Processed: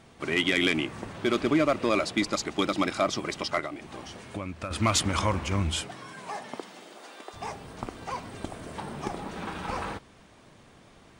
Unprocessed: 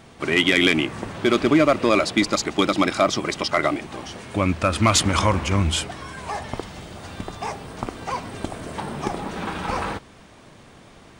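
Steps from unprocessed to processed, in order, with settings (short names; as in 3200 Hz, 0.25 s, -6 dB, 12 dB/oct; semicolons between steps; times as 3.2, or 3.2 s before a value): 3.59–4.71 compressor 6:1, threshold -25 dBFS, peak gain reduction 10 dB; 5.81–7.33 HPF 98 Hz -> 390 Hz 24 dB/oct; gain -6.5 dB; MP3 80 kbps 48000 Hz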